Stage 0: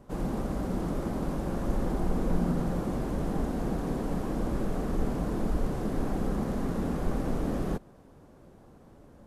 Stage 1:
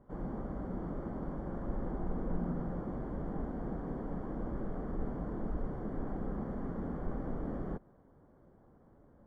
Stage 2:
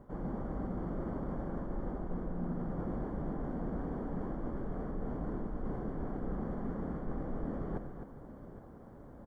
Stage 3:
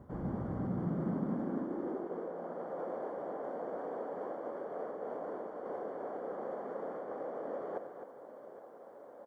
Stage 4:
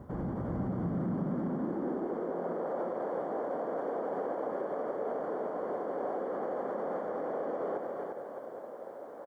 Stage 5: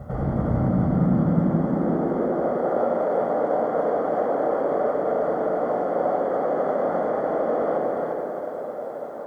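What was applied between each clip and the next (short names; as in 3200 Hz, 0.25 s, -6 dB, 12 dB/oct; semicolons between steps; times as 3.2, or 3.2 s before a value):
polynomial smoothing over 41 samples; gain -8 dB
reverse; compressor 6:1, threshold -44 dBFS, peak gain reduction 15 dB; reverse; tapped delay 92/259/814 ms -12.5/-9/-15.5 dB; gain +9 dB
high-pass sweep 75 Hz -> 530 Hz, 0.13–2.42
limiter -34 dBFS, peak gain reduction 10 dB; echo 0.351 s -4 dB; gain +6 dB
reverb RT60 1.6 s, pre-delay 14 ms, DRR 2 dB; gain +6.5 dB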